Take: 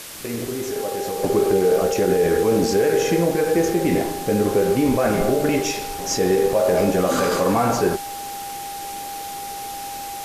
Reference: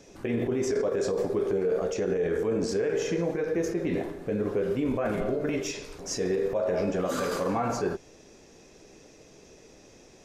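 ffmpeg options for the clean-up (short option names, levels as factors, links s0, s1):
-af "bandreject=f=800:w=30,afwtdn=0.018,asetnsamples=n=441:p=0,asendcmd='1.23 volume volume -9dB',volume=1"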